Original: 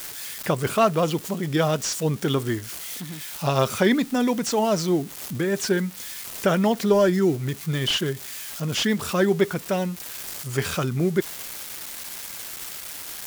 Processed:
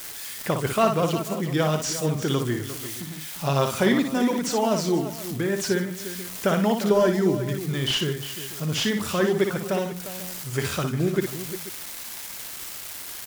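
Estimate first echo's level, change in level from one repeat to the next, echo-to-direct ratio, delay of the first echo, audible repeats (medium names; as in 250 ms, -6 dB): -6.0 dB, no regular repeats, -4.5 dB, 58 ms, 4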